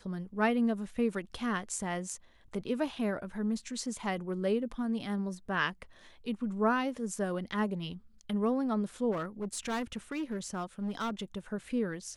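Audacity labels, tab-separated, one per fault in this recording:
9.110000	11.230000	clipped -30.5 dBFS

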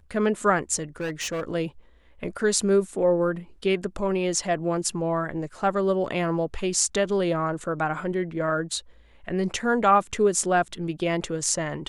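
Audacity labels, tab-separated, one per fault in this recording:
1.000000	1.440000	clipped -25.5 dBFS

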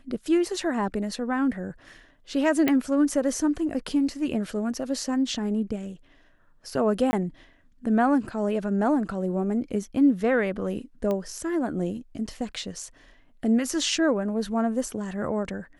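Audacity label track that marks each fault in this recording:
2.680000	2.680000	pop -10 dBFS
7.110000	7.130000	gap 20 ms
11.110000	11.110000	pop -17 dBFS

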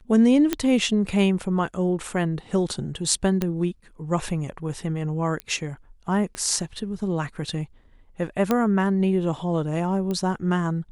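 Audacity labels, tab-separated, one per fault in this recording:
0.530000	0.530000	pop -8 dBFS
3.420000	3.420000	pop -11 dBFS
5.400000	5.400000	pop -16 dBFS
6.350000	6.350000	pop -18 dBFS
8.510000	8.510000	pop -8 dBFS
10.110000	10.110000	pop -17 dBFS

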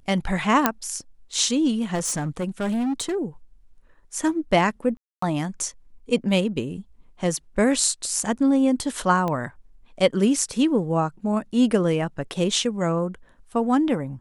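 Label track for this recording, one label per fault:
0.660000	0.660000	pop -2 dBFS
1.940000	3.160000	clipped -21.5 dBFS
4.970000	5.220000	gap 0.254 s
9.280000	9.280000	pop -15 dBFS

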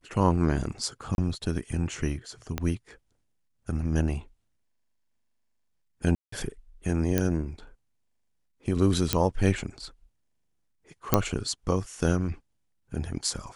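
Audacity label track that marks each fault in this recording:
1.150000	1.180000	gap 31 ms
2.580000	2.580000	pop -14 dBFS
6.150000	6.320000	gap 0.174 s
7.180000	7.180000	pop -9 dBFS
9.130000	9.130000	pop -6 dBFS
11.140000	11.140000	pop -4 dBFS

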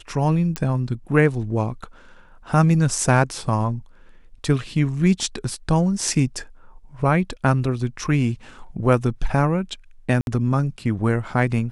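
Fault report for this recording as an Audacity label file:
0.560000	0.560000	pop -10 dBFS
10.210000	10.270000	gap 61 ms

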